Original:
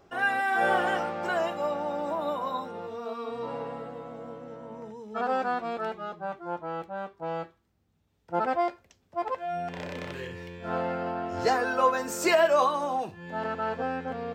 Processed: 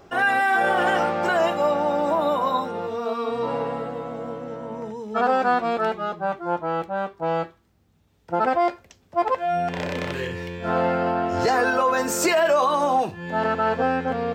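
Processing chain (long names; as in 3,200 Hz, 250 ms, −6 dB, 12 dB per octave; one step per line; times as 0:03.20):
brickwall limiter −21 dBFS, peak gain reduction 9 dB
level +9 dB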